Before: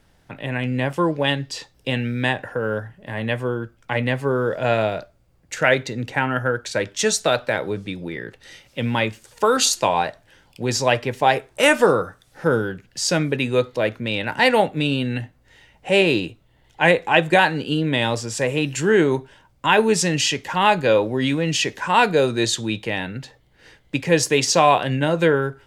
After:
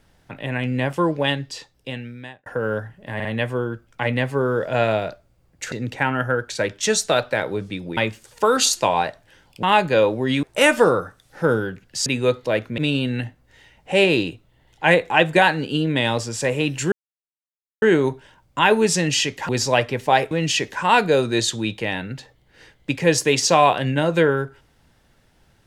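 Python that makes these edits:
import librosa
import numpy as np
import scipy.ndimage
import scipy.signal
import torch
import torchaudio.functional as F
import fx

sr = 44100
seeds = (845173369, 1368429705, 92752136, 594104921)

y = fx.edit(x, sr, fx.fade_out_span(start_s=1.18, length_s=1.28),
    fx.stutter(start_s=3.15, slice_s=0.05, count=3),
    fx.cut(start_s=5.62, length_s=0.26),
    fx.cut(start_s=8.13, length_s=0.84),
    fx.swap(start_s=10.63, length_s=0.82, other_s=20.56, other_length_s=0.8),
    fx.cut(start_s=13.08, length_s=0.28),
    fx.cut(start_s=14.08, length_s=0.67),
    fx.insert_silence(at_s=18.89, length_s=0.9), tone=tone)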